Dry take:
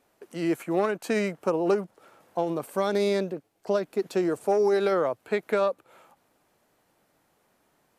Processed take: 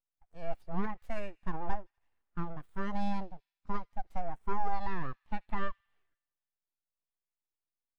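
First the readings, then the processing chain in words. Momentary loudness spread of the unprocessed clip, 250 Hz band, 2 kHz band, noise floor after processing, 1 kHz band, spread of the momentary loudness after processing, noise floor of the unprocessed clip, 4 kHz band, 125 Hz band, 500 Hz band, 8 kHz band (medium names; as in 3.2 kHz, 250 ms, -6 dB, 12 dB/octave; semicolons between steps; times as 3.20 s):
9 LU, -11.5 dB, -10.0 dB, under -85 dBFS, -5.0 dB, 9 LU, -70 dBFS, -15.5 dB, -5.0 dB, -20.5 dB, under -20 dB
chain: full-wave rectifier; feedback echo behind a high-pass 80 ms, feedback 71%, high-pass 2.2 kHz, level -18 dB; spectral contrast expander 1.5:1; trim -4 dB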